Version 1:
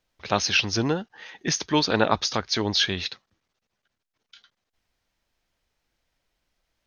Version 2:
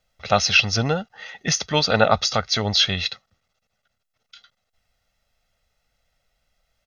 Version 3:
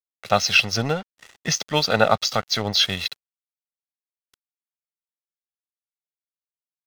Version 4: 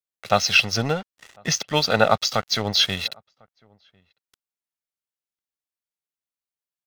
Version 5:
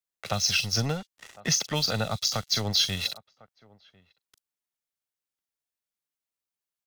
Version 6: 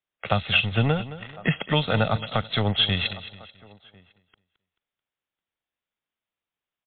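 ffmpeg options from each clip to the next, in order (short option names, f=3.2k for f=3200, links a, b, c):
-af "aecho=1:1:1.5:0.72,volume=2.5dB"
-af "highpass=95,aeval=exprs='sgn(val(0))*max(abs(val(0))-0.0168,0)':c=same"
-filter_complex "[0:a]asplit=2[a][b];[b]adelay=1050,volume=-30dB,highshelf=f=4k:g=-23.6[c];[a][c]amix=inputs=2:normalize=0"
-filter_complex "[0:a]acrossover=split=170|4500[a][b][c];[b]acompressor=threshold=-29dB:ratio=6[d];[c]asplit=2[e][f];[f]adelay=40,volume=-4.5dB[g];[e][g]amix=inputs=2:normalize=0[h];[a][d][h]amix=inputs=3:normalize=0"
-af "aecho=1:1:218|436|654:0.178|0.0676|0.0257,volume=7dB" -ar 8000 -c:a libmp3lame -b:a 40k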